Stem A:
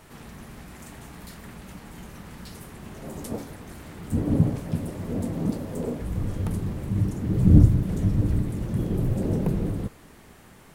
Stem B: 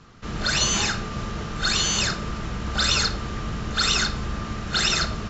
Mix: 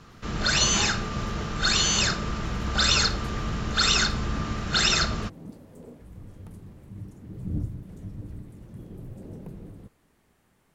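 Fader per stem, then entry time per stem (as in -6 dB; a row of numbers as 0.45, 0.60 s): -16.0, 0.0 dB; 0.00, 0.00 s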